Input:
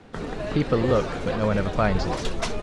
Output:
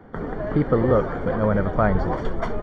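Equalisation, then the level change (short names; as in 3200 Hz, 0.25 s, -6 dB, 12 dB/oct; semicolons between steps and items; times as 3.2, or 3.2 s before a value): polynomial smoothing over 41 samples; +2.5 dB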